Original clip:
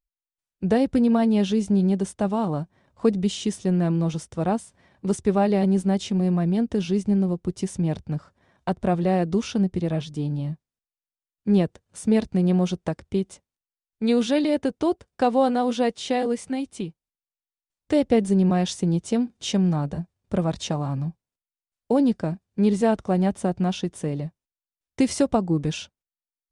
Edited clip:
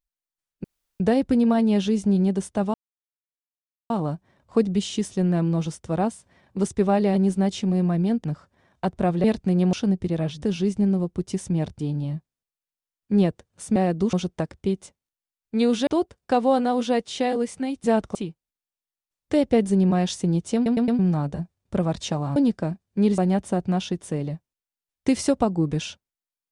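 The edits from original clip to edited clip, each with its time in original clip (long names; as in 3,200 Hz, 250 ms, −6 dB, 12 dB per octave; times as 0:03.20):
0:00.64: splice in room tone 0.36 s
0:02.38: splice in silence 1.16 s
0:06.72–0:08.08: move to 0:10.15
0:09.08–0:09.45: swap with 0:12.12–0:12.61
0:14.35–0:14.77: remove
0:19.14: stutter in place 0.11 s, 4 plays
0:20.95–0:21.97: remove
0:22.79–0:23.10: move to 0:16.74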